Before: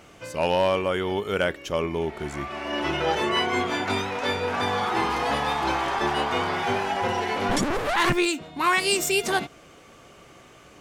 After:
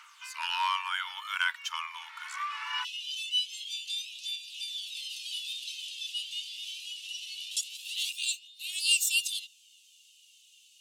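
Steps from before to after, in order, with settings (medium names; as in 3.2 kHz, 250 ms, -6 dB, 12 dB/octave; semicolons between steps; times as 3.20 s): rippled Chebyshev high-pass 930 Hz, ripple 3 dB, from 2.83 s 2.7 kHz; phaser 0.23 Hz, delay 2.9 ms, feedback 41%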